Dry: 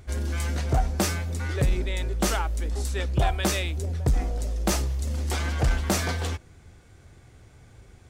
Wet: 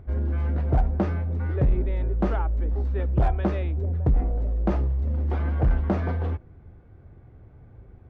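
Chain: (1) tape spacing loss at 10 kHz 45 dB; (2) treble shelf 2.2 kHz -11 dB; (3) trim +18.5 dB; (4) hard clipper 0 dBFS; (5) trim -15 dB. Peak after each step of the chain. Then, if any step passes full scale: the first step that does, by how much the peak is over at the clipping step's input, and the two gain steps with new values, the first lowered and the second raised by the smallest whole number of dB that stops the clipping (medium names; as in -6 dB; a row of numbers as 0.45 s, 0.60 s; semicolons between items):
-15.0 dBFS, -15.0 dBFS, +3.5 dBFS, 0.0 dBFS, -15.0 dBFS; step 3, 3.5 dB; step 3 +14.5 dB, step 5 -11 dB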